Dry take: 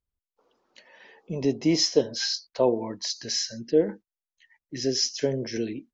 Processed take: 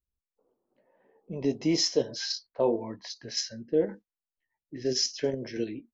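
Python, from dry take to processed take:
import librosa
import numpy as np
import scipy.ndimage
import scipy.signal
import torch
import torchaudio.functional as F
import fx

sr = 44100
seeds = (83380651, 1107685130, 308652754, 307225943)

p1 = fx.env_lowpass(x, sr, base_hz=530.0, full_db=-22.0)
p2 = fx.chorus_voices(p1, sr, voices=2, hz=0.94, base_ms=18, depth_ms=3.0, mix_pct=25)
p3 = fx.level_steps(p2, sr, step_db=15)
p4 = p2 + (p3 * librosa.db_to_amplitude(1.5))
y = p4 * librosa.db_to_amplitude(-5.0)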